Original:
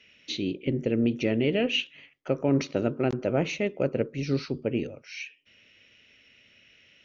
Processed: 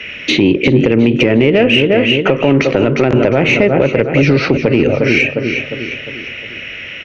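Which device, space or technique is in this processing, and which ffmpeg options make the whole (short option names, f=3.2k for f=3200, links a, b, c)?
mastering chain: -filter_complex "[0:a]equalizer=f=200:t=o:w=1:g=-3.5,highshelf=f=3.2k:t=q:w=1.5:g=-9.5,aecho=1:1:354|708|1062|1416|1770:0.224|0.103|0.0474|0.0218|0.01,acrossover=split=110|1800[a][b][c];[a]acompressor=threshold=-50dB:ratio=4[d];[b]acompressor=threshold=-30dB:ratio=4[e];[c]acompressor=threshold=-44dB:ratio=4[f];[d][e][f]amix=inputs=3:normalize=0,acompressor=threshold=-35dB:ratio=3,asoftclip=type=tanh:threshold=-26.5dB,alimiter=level_in=31.5dB:limit=-1dB:release=50:level=0:latency=1,volume=-1dB"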